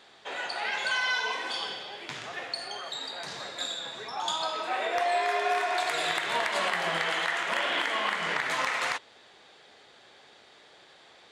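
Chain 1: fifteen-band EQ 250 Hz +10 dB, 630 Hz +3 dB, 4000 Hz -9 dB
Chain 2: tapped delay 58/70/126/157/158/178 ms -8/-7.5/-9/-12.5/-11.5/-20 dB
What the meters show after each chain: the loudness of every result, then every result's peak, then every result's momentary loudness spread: -29.5, -27.5 LUFS; -15.5, -13.0 dBFS; 13, 10 LU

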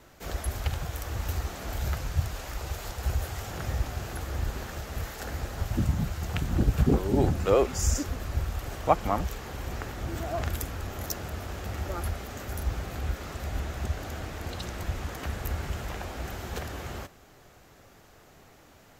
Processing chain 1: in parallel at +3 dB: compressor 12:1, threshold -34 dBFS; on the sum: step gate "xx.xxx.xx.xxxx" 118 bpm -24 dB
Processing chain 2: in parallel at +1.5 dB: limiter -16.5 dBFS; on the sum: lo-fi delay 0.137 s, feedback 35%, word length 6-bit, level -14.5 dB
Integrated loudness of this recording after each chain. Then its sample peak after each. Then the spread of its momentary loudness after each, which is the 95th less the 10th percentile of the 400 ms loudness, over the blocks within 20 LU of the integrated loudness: -29.0, -25.5 LUFS; -5.0, -3.5 dBFS; 10, 10 LU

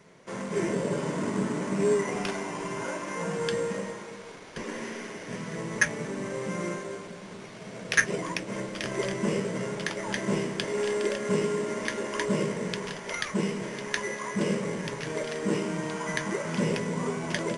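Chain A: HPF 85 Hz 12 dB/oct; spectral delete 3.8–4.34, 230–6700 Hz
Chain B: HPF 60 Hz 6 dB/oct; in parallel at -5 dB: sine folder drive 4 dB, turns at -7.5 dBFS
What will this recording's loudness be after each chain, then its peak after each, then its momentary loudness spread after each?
-30.5, -23.0 LUFS; -7.5, -5.0 dBFS; 11, 10 LU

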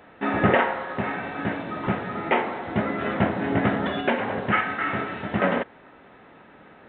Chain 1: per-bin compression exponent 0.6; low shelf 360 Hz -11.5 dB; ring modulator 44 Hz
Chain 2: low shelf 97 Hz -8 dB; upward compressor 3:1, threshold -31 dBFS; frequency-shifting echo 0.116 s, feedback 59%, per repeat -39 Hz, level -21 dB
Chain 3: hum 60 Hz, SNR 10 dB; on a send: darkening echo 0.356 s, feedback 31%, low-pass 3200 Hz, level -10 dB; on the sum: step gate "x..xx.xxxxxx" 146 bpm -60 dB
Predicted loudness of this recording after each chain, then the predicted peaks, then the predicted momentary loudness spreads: -26.5, -25.5, -26.0 LUFS; -8.0, -6.0, -6.0 dBFS; 16, 17, 11 LU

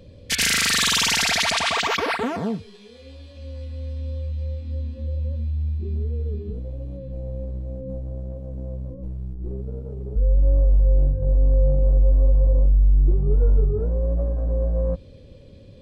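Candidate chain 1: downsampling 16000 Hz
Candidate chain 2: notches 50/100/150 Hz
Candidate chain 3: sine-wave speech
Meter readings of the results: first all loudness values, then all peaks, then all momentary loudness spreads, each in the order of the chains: -22.5, -25.0, -19.0 LUFS; -8.5, -8.0, -2.0 dBFS; 15, 16, 19 LU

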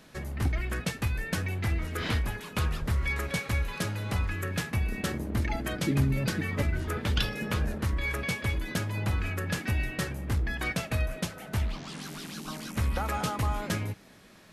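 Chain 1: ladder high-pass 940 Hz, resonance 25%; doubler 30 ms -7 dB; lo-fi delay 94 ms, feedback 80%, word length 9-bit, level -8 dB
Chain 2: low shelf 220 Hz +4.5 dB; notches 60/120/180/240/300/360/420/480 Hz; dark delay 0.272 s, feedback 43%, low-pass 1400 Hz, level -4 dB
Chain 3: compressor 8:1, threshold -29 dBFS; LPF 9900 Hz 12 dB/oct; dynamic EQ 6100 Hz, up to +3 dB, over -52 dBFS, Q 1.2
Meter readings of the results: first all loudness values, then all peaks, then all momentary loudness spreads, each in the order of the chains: -40.0, -27.5, -34.5 LUFS; -20.0, -11.5, -19.5 dBFS; 9, 4, 4 LU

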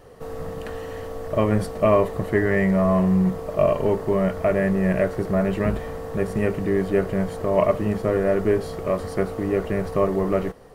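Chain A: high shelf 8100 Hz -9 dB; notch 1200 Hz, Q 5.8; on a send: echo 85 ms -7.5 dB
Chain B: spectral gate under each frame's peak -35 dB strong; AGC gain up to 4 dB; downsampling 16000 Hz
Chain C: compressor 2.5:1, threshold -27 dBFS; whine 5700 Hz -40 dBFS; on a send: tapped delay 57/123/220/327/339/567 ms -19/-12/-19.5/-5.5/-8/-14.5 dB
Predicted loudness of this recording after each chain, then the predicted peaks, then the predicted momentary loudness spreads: -21.5, -19.0, -26.5 LUFS; -5.0, -3.5, -12.5 dBFS; 11, 11, 5 LU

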